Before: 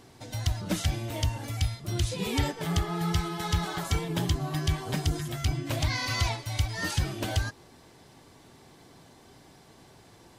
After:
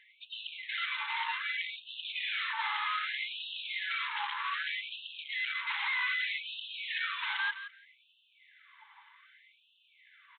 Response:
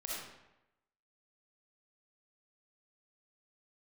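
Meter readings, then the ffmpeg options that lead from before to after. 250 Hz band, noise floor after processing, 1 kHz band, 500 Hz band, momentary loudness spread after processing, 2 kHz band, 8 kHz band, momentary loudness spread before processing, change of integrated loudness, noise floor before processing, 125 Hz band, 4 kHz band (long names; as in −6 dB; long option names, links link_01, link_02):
below −40 dB, −68 dBFS, −1.5 dB, below −40 dB, 9 LU, +5.0 dB, below −40 dB, 3 LU, −3.5 dB, −55 dBFS, below −40 dB, −0.5 dB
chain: -filter_complex "[0:a]afftdn=noise_reduction=19:noise_floor=-44,equalizer=frequency=2100:width=5.7:gain=8,asplit=2[link_01][link_02];[link_02]highpass=frequency=720:poles=1,volume=26dB,asoftclip=type=tanh:threshold=-14dB[link_03];[link_01][link_03]amix=inputs=2:normalize=0,lowpass=frequency=2000:poles=1,volume=-6dB,aresample=8000,asoftclip=type=tanh:threshold=-31dB,aresample=44100,alimiter=level_in=5.5dB:limit=-24dB:level=0:latency=1:release=84,volume=-5.5dB,aecho=1:1:169|338:0.266|0.0426,afftfilt=real='re*gte(b*sr/1024,790*pow(2600/790,0.5+0.5*sin(2*PI*0.64*pts/sr)))':imag='im*gte(b*sr/1024,790*pow(2600/790,0.5+0.5*sin(2*PI*0.64*pts/sr)))':win_size=1024:overlap=0.75,volume=3.5dB"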